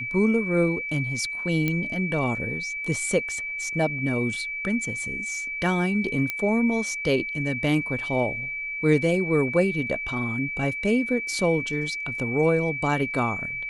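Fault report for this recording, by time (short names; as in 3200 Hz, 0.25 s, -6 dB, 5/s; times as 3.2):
tone 2300 Hz -29 dBFS
1.68 pop -12 dBFS
6.3 pop -12 dBFS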